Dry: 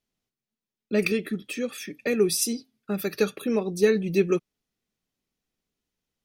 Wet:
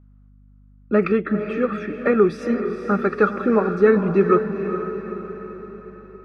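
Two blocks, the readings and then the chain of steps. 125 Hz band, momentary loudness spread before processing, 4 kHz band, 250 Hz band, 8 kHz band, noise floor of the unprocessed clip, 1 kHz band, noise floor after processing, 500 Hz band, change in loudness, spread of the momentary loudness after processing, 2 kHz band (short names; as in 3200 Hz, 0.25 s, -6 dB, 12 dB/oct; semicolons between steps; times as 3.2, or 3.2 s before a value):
+7.0 dB, 10 LU, under -10 dB, +7.0 dB, under -20 dB, under -85 dBFS, +17.0 dB, -50 dBFS, +6.5 dB, +5.5 dB, 17 LU, +5.0 dB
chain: in parallel at +1 dB: limiter -16.5 dBFS, peak gain reduction 8 dB; on the sum: synth low-pass 1300 Hz, resonance Q 5.2; diffused feedback echo 0.451 s, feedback 52%, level -8.5 dB; hum 50 Hz, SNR 29 dB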